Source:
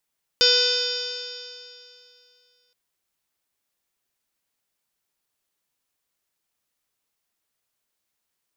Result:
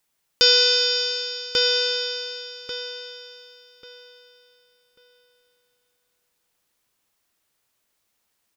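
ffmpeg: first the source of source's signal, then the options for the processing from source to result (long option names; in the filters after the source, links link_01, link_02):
-f lavfi -i "aevalsrc='0.0794*pow(10,-3*t/2.62)*sin(2*PI*489.54*t)+0.00841*pow(10,-3*t/2.62)*sin(2*PI*982.29*t)+0.0501*pow(10,-3*t/2.62)*sin(2*PI*1481.45*t)+0.0126*pow(10,-3*t/2.62)*sin(2*PI*1990.13*t)+0.0335*pow(10,-3*t/2.62)*sin(2*PI*2511.34*t)+0.0562*pow(10,-3*t/2.62)*sin(2*PI*3047.97*t)+0.112*pow(10,-3*t/2.62)*sin(2*PI*3602.78*t)+0.0299*pow(10,-3*t/2.62)*sin(2*PI*4178.34*t)+0.133*pow(10,-3*t/2.62)*sin(2*PI*4777.06*t)+0.1*pow(10,-3*t/2.62)*sin(2*PI*5401.18*t)+0.0119*pow(10,-3*t/2.62)*sin(2*PI*6052.75*t)+0.0251*pow(10,-3*t/2.62)*sin(2*PI*6733.64*t)':duration=2.32:sample_rate=44100"
-filter_complex "[0:a]asplit=2[link_01][link_02];[link_02]adelay=1141,lowpass=frequency=3700:poles=1,volume=-3dB,asplit=2[link_03][link_04];[link_04]adelay=1141,lowpass=frequency=3700:poles=1,volume=0.27,asplit=2[link_05][link_06];[link_06]adelay=1141,lowpass=frequency=3700:poles=1,volume=0.27,asplit=2[link_07][link_08];[link_08]adelay=1141,lowpass=frequency=3700:poles=1,volume=0.27[link_09];[link_01][link_03][link_05][link_07][link_09]amix=inputs=5:normalize=0,asplit=2[link_10][link_11];[link_11]alimiter=limit=-18dB:level=0:latency=1:release=146,volume=-0.5dB[link_12];[link_10][link_12]amix=inputs=2:normalize=0"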